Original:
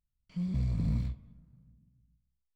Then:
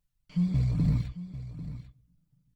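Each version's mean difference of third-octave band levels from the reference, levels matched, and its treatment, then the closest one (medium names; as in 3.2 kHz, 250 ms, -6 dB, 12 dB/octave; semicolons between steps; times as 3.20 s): 4.0 dB: reverb removal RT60 0.72 s; comb 6.7 ms, depth 56%; on a send: delay 794 ms -13.5 dB; on the sum: trim +5.5 dB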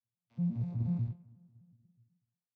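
5.0 dB: vocoder on a broken chord bare fifth, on A#2, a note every 122 ms; peaking EQ 780 Hz +8.5 dB 0.9 oct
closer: first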